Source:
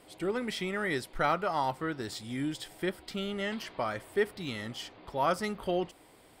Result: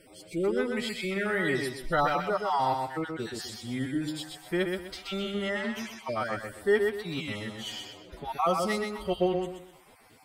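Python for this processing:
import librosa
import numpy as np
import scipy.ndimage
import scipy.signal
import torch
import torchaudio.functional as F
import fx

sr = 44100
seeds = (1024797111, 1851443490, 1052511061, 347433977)

y = fx.spec_dropout(x, sr, seeds[0], share_pct=27)
y = fx.echo_feedback(y, sr, ms=79, feedback_pct=30, wet_db=-4.5)
y = fx.stretch_vocoder(y, sr, factor=1.6)
y = y * 10.0 ** (3.0 / 20.0)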